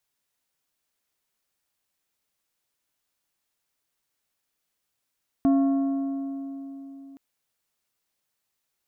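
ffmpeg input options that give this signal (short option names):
-f lavfi -i "aevalsrc='0.158*pow(10,-3*t/3.81)*sin(2*PI*274*t)+0.0447*pow(10,-3*t/2.894)*sin(2*PI*685*t)+0.0126*pow(10,-3*t/2.514)*sin(2*PI*1096*t)+0.00355*pow(10,-3*t/2.351)*sin(2*PI*1370*t)+0.001*pow(10,-3*t/2.173)*sin(2*PI*1781*t)':d=1.72:s=44100"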